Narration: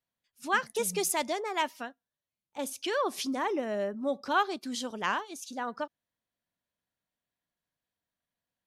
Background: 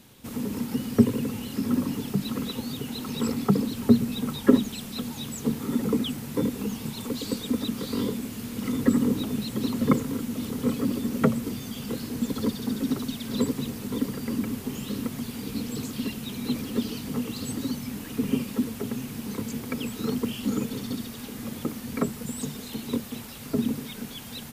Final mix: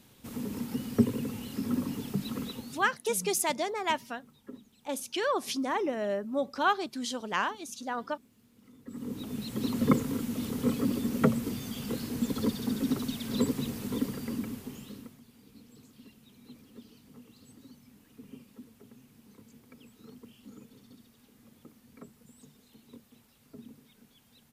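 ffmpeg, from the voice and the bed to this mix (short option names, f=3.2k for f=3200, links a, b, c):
-filter_complex "[0:a]adelay=2300,volume=0.5dB[a];[1:a]volume=20.5dB,afade=t=out:st=2.42:d=0.53:silence=0.0707946,afade=t=in:st=8.86:d=0.94:silence=0.0501187,afade=t=out:st=13.87:d=1.33:silence=0.0944061[b];[a][b]amix=inputs=2:normalize=0"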